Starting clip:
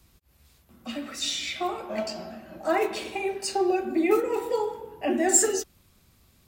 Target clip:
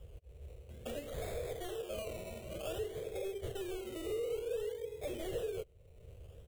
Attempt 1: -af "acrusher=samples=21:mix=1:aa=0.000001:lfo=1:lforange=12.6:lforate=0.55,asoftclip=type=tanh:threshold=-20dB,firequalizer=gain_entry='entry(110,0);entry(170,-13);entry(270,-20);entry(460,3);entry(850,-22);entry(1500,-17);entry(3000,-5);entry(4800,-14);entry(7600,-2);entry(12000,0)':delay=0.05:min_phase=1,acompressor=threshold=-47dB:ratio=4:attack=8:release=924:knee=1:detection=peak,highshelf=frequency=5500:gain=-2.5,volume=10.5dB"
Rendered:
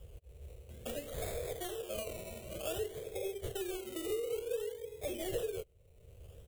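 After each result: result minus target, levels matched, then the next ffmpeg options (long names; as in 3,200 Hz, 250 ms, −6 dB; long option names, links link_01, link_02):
8,000 Hz band +5.0 dB; soft clipping: distortion −7 dB
-af "acrusher=samples=21:mix=1:aa=0.000001:lfo=1:lforange=12.6:lforate=0.55,asoftclip=type=tanh:threshold=-20dB,firequalizer=gain_entry='entry(110,0);entry(170,-13);entry(270,-20);entry(460,3);entry(850,-22);entry(1500,-17);entry(3000,-5);entry(4800,-14);entry(7600,-2);entry(12000,0)':delay=0.05:min_phase=1,acompressor=threshold=-47dB:ratio=4:attack=8:release=924:knee=1:detection=peak,highshelf=frequency=5500:gain=-10,volume=10.5dB"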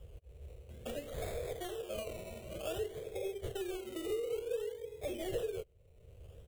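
soft clipping: distortion −7 dB
-af "acrusher=samples=21:mix=1:aa=0.000001:lfo=1:lforange=12.6:lforate=0.55,asoftclip=type=tanh:threshold=-29dB,firequalizer=gain_entry='entry(110,0);entry(170,-13);entry(270,-20);entry(460,3);entry(850,-22);entry(1500,-17);entry(3000,-5);entry(4800,-14);entry(7600,-2);entry(12000,0)':delay=0.05:min_phase=1,acompressor=threshold=-47dB:ratio=4:attack=8:release=924:knee=1:detection=peak,highshelf=frequency=5500:gain=-10,volume=10.5dB"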